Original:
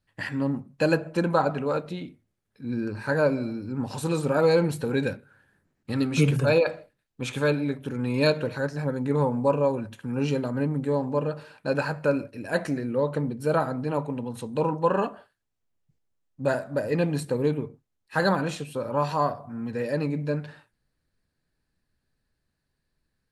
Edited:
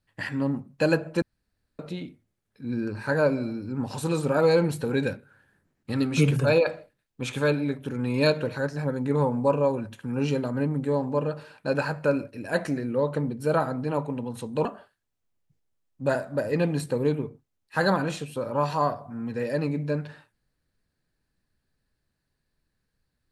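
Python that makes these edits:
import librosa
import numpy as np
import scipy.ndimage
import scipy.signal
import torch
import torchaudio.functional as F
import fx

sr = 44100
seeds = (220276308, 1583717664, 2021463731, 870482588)

y = fx.edit(x, sr, fx.room_tone_fill(start_s=1.22, length_s=0.57),
    fx.cut(start_s=14.65, length_s=0.39), tone=tone)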